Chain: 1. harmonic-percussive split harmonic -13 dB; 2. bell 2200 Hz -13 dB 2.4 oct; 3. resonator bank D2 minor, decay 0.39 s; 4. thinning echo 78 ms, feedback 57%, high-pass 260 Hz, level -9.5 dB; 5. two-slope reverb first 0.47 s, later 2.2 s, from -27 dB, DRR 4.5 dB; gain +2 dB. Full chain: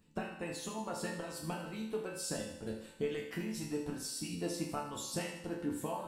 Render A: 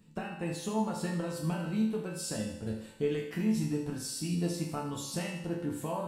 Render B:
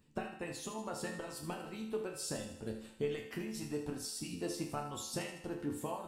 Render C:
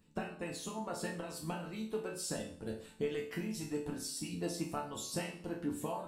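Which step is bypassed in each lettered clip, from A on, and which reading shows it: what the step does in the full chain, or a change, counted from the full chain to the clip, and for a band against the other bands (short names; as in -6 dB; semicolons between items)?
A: 1, 125 Hz band +7.0 dB; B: 5, loudness change -1.5 LU; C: 4, echo-to-direct -2.5 dB to -4.5 dB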